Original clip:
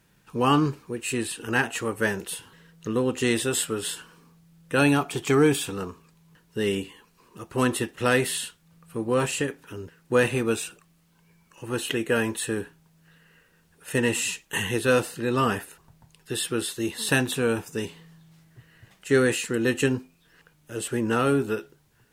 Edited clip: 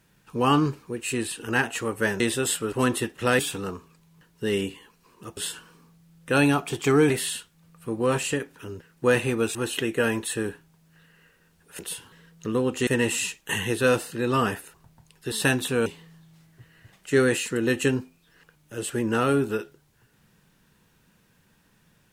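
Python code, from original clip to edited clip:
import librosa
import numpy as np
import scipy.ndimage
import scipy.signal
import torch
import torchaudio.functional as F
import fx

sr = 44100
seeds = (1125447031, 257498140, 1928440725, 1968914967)

y = fx.edit(x, sr, fx.move(start_s=2.2, length_s=1.08, to_s=13.91),
    fx.swap(start_s=3.8, length_s=1.73, other_s=7.51, other_length_s=0.67),
    fx.cut(start_s=10.63, length_s=1.04),
    fx.cut(start_s=16.36, length_s=0.63),
    fx.cut(start_s=17.53, length_s=0.31), tone=tone)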